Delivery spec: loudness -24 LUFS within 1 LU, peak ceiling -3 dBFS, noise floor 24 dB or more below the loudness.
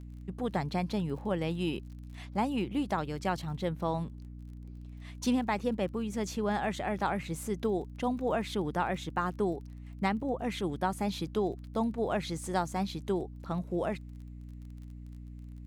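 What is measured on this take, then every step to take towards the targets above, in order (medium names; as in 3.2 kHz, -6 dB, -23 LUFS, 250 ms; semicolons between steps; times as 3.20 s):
tick rate 30 per s; hum 60 Hz; highest harmonic 300 Hz; hum level -43 dBFS; loudness -33.0 LUFS; peak level -16.5 dBFS; loudness target -24.0 LUFS
-> de-click; de-hum 60 Hz, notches 5; trim +9 dB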